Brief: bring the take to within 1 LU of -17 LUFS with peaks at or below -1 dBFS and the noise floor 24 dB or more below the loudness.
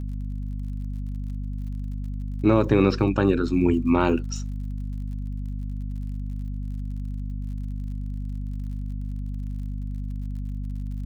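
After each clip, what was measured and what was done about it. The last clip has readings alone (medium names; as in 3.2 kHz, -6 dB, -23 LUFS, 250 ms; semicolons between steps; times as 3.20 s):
tick rate 52 per s; hum 50 Hz; highest harmonic 250 Hz; hum level -27 dBFS; loudness -27.5 LUFS; peak level -7.0 dBFS; loudness target -17.0 LUFS
-> de-click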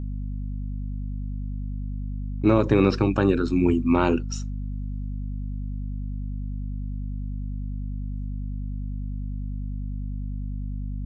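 tick rate 0.090 per s; hum 50 Hz; highest harmonic 250 Hz; hum level -27 dBFS
-> hum notches 50/100/150/200/250 Hz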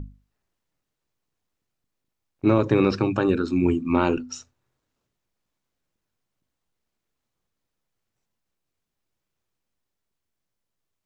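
hum not found; loudness -22.5 LUFS; peak level -7.0 dBFS; loudness target -17.0 LUFS
-> trim +5.5 dB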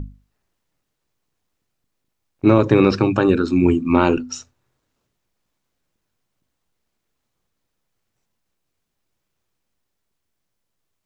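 loudness -17.0 LUFS; peak level -1.5 dBFS; noise floor -77 dBFS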